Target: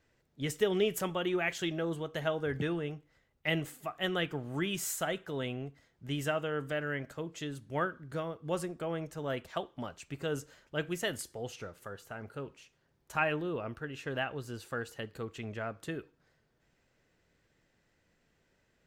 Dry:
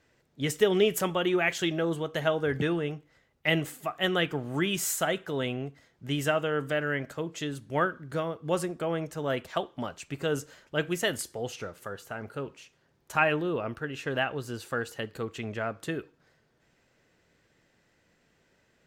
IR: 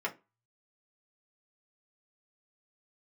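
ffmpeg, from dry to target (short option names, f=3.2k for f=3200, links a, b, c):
-af "lowshelf=f=65:g=9.5,volume=-6dB"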